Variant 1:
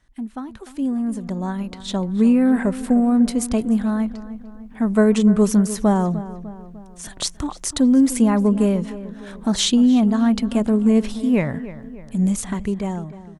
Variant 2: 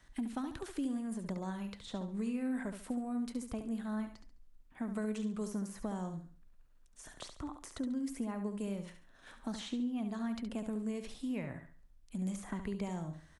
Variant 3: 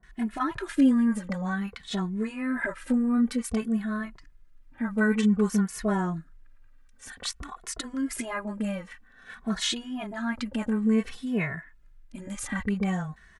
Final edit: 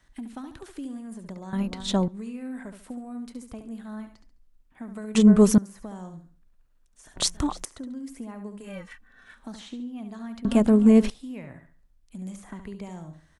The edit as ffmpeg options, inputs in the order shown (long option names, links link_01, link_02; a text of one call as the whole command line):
ffmpeg -i take0.wav -i take1.wav -i take2.wav -filter_complex "[0:a]asplit=4[link_01][link_02][link_03][link_04];[1:a]asplit=6[link_05][link_06][link_07][link_08][link_09][link_10];[link_05]atrim=end=1.532[link_11];[link_01]atrim=start=1.528:end=2.082[link_12];[link_06]atrim=start=2.078:end=5.152[link_13];[link_02]atrim=start=5.148:end=5.582[link_14];[link_07]atrim=start=5.578:end=7.162[link_15];[link_03]atrim=start=7.158:end=7.652[link_16];[link_08]atrim=start=7.648:end=8.82[link_17];[2:a]atrim=start=8.58:end=9.43[link_18];[link_09]atrim=start=9.19:end=10.452[link_19];[link_04]atrim=start=10.448:end=11.102[link_20];[link_10]atrim=start=11.098[link_21];[link_11][link_12]acrossfade=duration=0.004:curve1=hsin:curve2=hsin[link_22];[link_22][link_13]acrossfade=duration=0.004:curve1=hsin:curve2=hsin[link_23];[link_23][link_14]acrossfade=duration=0.004:curve1=hsin:curve2=hsin[link_24];[link_24][link_15]acrossfade=duration=0.004:curve1=hsin:curve2=hsin[link_25];[link_25][link_16]acrossfade=duration=0.004:curve1=hsin:curve2=hsin[link_26];[link_26][link_17]acrossfade=duration=0.004:curve1=hsin:curve2=hsin[link_27];[link_27][link_18]acrossfade=duration=0.24:curve1=tri:curve2=tri[link_28];[link_28][link_19]acrossfade=duration=0.24:curve1=tri:curve2=tri[link_29];[link_29][link_20]acrossfade=duration=0.004:curve1=hsin:curve2=hsin[link_30];[link_30][link_21]acrossfade=duration=0.004:curve1=hsin:curve2=hsin" out.wav